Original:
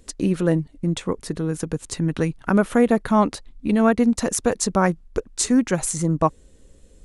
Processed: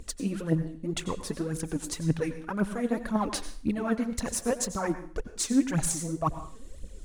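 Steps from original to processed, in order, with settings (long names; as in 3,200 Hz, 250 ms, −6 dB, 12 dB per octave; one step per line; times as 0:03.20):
reversed playback
downward compressor 6 to 1, threshold −29 dBFS, peak gain reduction 16.5 dB
reversed playback
phase shifter 1.9 Hz, delay 4.7 ms, feedback 71%
convolution reverb RT60 0.45 s, pre-delay 82 ms, DRR 11 dB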